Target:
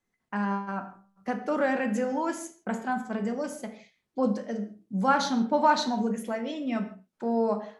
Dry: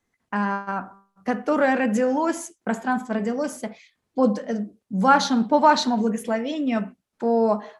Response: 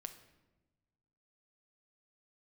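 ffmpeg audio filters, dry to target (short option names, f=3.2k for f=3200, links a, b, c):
-filter_complex "[1:a]atrim=start_sample=2205,afade=t=out:st=0.25:d=0.01,atrim=end_sample=11466,asetrate=52920,aresample=44100[a];[0:a][a]afir=irnorm=-1:irlink=0"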